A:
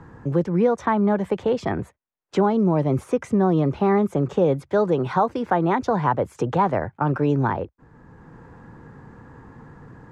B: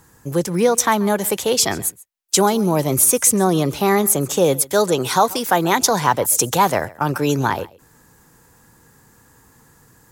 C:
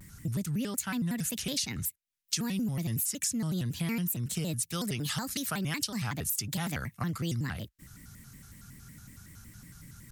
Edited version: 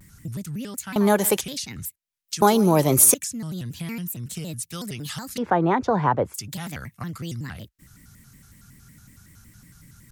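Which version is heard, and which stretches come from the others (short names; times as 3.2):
C
0.96–1.41 from B
2.42–3.14 from B
5.38–6.34 from A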